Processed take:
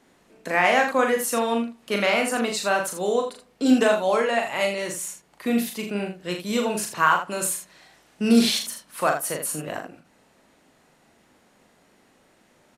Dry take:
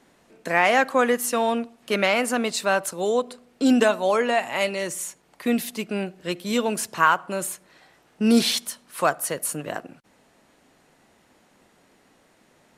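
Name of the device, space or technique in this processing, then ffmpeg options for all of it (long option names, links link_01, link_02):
slapback doubling: -filter_complex "[0:a]asettb=1/sr,asplit=3[link_01][link_02][link_03];[link_01]atrim=end=7.174[link_04];[link_02]atrim=start=7.17:end=8.29,asetpts=PTS-STARTPTS,afade=type=in:duration=0.004:curve=qsin,afade=type=out:start_time=1.116:duration=0.004:curve=qsin,equalizer=frequency=7200:width=0.34:gain=6[link_05];[link_03]atrim=start=8.286[link_06];[link_04][link_05]acrossfade=duration=0.004:curve1=hsin:curve2=qsin[link_07];[link_07][link_06]acrossfade=duration=0.004:curve1=qsin:curve2=hsin,asplit=3[link_08][link_09][link_10];[link_09]adelay=39,volume=-4.5dB[link_11];[link_10]adelay=81,volume=-8.5dB[link_12];[link_08][link_11][link_12]amix=inputs=3:normalize=0,volume=-2dB"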